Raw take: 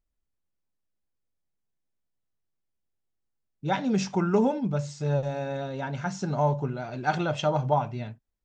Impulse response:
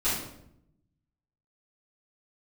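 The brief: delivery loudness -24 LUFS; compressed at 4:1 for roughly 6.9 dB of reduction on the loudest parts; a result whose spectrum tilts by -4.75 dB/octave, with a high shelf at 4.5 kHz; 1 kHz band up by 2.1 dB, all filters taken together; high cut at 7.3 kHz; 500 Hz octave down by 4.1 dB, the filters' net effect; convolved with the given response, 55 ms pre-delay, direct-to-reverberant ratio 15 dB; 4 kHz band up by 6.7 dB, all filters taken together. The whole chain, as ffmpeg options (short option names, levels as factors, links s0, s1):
-filter_complex "[0:a]lowpass=7300,equalizer=f=500:t=o:g=-7,equalizer=f=1000:t=o:g=5,equalizer=f=4000:t=o:g=7,highshelf=f=4500:g=3.5,acompressor=threshold=0.0447:ratio=4,asplit=2[s0][s1];[1:a]atrim=start_sample=2205,adelay=55[s2];[s1][s2]afir=irnorm=-1:irlink=0,volume=0.0531[s3];[s0][s3]amix=inputs=2:normalize=0,volume=2.51"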